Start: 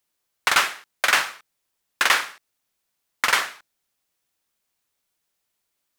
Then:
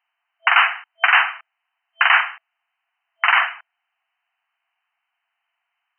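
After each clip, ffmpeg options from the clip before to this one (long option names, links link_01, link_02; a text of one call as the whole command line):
ffmpeg -i in.wav -af "afftfilt=real='re*between(b*sr/4096,660,3100)':imag='im*between(b*sr/4096,660,3100)':win_size=4096:overlap=0.75,alimiter=level_in=10dB:limit=-1dB:release=50:level=0:latency=1,volume=-1dB" out.wav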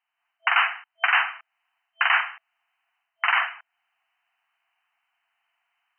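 ffmpeg -i in.wav -af "dynaudnorm=framelen=130:gausssize=3:maxgain=8.5dB,volume=-7dB" out.wav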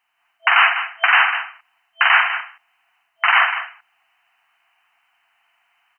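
ffmpeg -i in.wav -af "aecho=1:1:199:0.168,alimiter=level_in=13.5dB:limit=-1dB:release=50:level=0:latency=1,volume=-2dB" out.wav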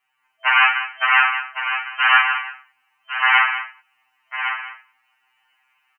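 ffmpeg -i in.wav -af "aecho=1:1:1107:0.355,afftfilt=real='re*2.45*eq(mod(b,6),0)':imag='im*2.45*eq(mod(b,6),0)':win_size=2048:overlap=0.75,volume=1dB" out.wav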